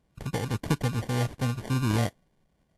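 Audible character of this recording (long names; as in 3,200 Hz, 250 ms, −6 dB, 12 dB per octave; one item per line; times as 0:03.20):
aliases and images of a low sample rate 1,300 Hz, jitter 0%
Ogg Vorbis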